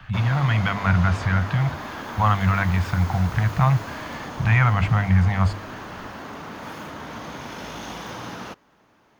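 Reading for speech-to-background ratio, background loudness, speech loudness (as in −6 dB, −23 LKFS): 13.0 dB, −34.5 LKFS, −21.5 LKFS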